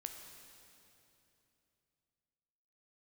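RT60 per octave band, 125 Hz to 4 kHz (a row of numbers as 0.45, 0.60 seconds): 3.7, 3.3, 3.1, 2.8, 2.7, 2.7 seconds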